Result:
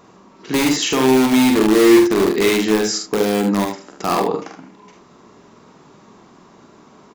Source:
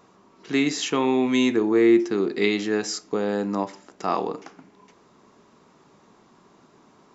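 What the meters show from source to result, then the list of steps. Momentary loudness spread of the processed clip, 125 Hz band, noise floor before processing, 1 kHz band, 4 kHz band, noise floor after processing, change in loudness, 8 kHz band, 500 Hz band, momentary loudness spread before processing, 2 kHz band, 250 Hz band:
11 LU, +8.5 dB, -57 dBFS, +7.5 dB, +8.5 dB, -48 dBFS, +7.0 dB, no reading, +7.0 dB, 11 LU, +6.5 dB, +7.0 dB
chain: bass shelf 350 Hz +2 dB; in parallel at -5 dB: integer overflow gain 16 dB; on the sum: multi-tap echo 46/74/84 ms -5/-8/-18 dB; trim +2.5 dB

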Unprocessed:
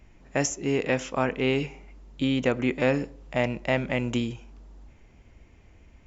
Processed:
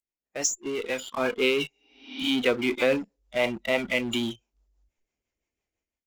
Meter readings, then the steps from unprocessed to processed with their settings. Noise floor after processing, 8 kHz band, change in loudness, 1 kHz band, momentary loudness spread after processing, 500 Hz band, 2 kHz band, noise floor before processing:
under -85 dBFS, no reading, 0.0 dB, -2.5 dB, 10 LU, +0.5 dB, +2.0 dB, -55 dBFS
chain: spectral noise reduction 29 dB; tone controls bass -14 dB, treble +11 dB; rotary cabinet horn 6 Hz; level rider gain up to 14.5 dB; in parallel at -12 dB: fuzz box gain 32 dB, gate -40 dBFS; on the sum: spectral replace 1.76–2.26 s, 220–6100 Hz both; trim -8.5 dB

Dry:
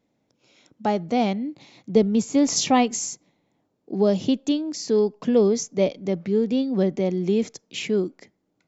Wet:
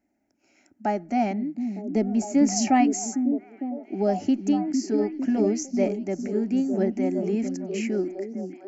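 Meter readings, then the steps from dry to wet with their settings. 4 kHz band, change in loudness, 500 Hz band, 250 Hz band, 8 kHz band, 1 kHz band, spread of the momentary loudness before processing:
-9.0 dB, -2.5 dB, -5.0 dB, 0.0 dB, no reading, -0.5 dB, 10 LU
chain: static phaser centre 720 Hz, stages 8; repeats whose band climbs or falls 454 ms, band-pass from 220 Hz, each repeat 0.7 oct, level -3 dB

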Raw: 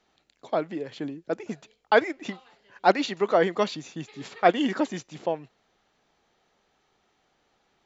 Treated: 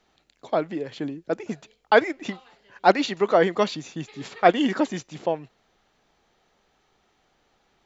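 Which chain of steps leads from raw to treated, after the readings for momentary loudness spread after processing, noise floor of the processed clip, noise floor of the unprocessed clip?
16 LU, -68 dBFS, -71 dBFS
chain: bass shelf 60 Hz +8 dB; trim +2.5 dB

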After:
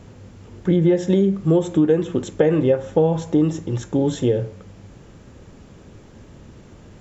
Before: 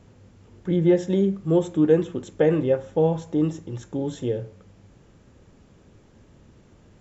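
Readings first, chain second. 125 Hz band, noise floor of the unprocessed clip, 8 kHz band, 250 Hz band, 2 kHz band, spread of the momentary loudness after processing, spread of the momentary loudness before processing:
+5.0 dB, -55 dBFS, no reading, +4.0 dB, +3.0 dB, 7 LU, 12 LU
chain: compression 6:1, threshold -22 dBFS, peak gain reduction 10 dB; trim +9 dB

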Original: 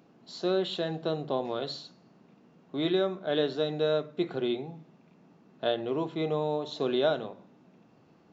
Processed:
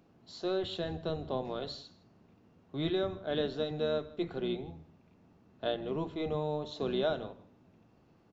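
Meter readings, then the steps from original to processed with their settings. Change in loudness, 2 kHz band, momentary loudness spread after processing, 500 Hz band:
-4.5 dB, -5.0 dB, 11 LU, -5.0 dB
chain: octave divider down 1 oct, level -4 dB; on a send: delay 160 ms -21 dB; on the sum: trim -5 dB

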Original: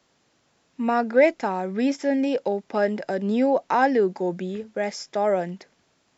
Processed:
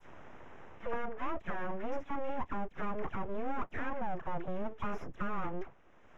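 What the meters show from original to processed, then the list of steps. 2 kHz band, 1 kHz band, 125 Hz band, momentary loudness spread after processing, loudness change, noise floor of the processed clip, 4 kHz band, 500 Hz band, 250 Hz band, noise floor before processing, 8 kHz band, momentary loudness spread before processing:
-13.5 dB, -12.5 dB, -9.0 dB, 10 LU, -16.0 dB, -59 dBFS, -18.0 dB, -18.5 dB, -17.0 dB, -67 dBFS, no reading, 10 LU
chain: tracing distortion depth 0.11 ms; bass shelf 260 Hz +12 dB; reverse; compression 6:1, threshold -24 dBFS, peak gain reduction 15.5 dB; reverse; overdrive pedal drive 12 dB, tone 1.2 kHz, clips at -14.5 dBFS; phase dispersion lows, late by 76 ms, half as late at 830 Hz; full-wave rectifier; boxcar filter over 10 samples; three bands compressed up and down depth 70%; trim -6 dB

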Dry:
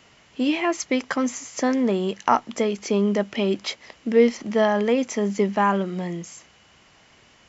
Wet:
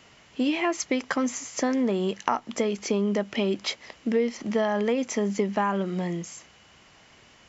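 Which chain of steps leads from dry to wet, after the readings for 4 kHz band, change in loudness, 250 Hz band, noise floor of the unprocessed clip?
-2.0 dB, -4.0 dB, -3.5 dB, -55 dBFS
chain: compression 5:1, threshold -21 dBFS, peak gain reduction 9.5 dB

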